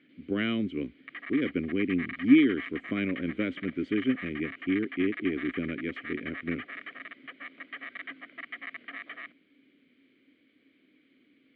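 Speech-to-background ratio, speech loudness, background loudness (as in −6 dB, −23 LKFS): 11.5 dB, −29.5 LKFS, −41.0 LKFS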